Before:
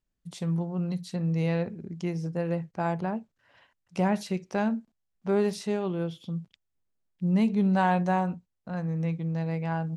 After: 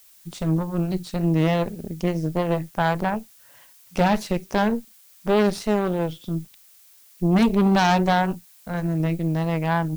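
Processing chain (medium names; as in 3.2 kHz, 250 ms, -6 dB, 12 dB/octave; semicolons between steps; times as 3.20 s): vibrato 3.4 Hz 57 cents; Chebyshev shaper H 6 -12 dB, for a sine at -14 dBFS; added noise blue -57 dBFS; trim +4.5 dB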